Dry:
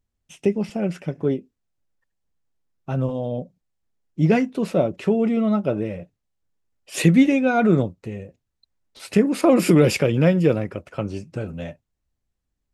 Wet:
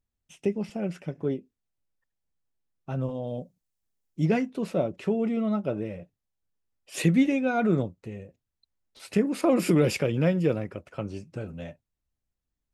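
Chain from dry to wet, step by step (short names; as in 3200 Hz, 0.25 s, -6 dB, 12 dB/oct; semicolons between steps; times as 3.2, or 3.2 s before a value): 3.27–4.26 high shelf 5200 Hz +11.5 dB; gain -6.5 dB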